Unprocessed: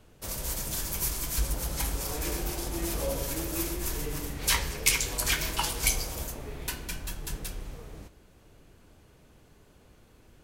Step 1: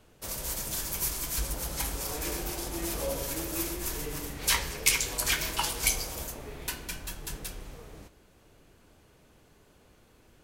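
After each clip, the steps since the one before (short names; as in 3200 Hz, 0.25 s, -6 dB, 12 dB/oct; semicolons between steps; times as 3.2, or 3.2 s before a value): low shelf 210 Hz -5 dB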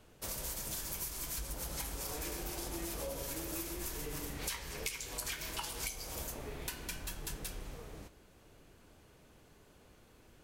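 compressor 10:1, threshold -35 dBFS, peak gain reduction 17.5 dB; gain -1.5 dB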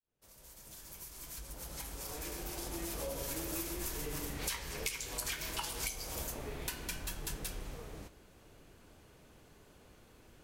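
opening faded in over 3.32 s; gain +1.5 dB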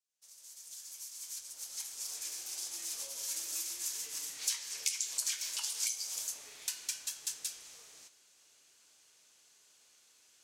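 band-pass 6500 Hz, Q 1.6; gain +9 dB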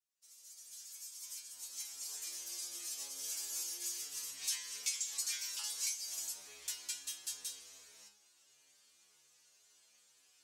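metallic resonator 68 Hz, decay 0.64 s, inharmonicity 0.002; gain +8 dB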